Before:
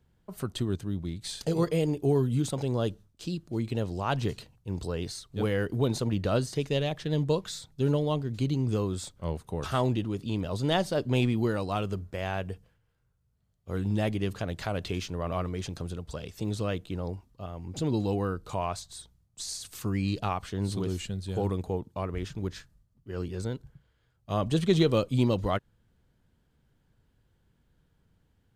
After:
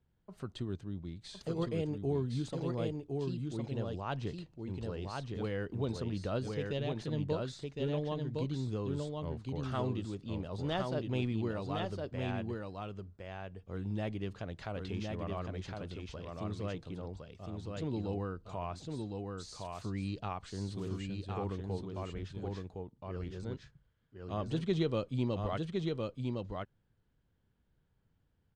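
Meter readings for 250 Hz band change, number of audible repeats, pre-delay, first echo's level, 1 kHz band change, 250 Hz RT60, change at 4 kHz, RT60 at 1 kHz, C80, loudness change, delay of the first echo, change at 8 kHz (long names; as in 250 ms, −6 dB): −7.0 dB, 1, no reverb audible, −3.5 dB, −7.5 dB, no reverb audible, −9.0 dB, no reverb audible, no reverb audible, −7.5 dB, 1,061 ms, −14.5 dB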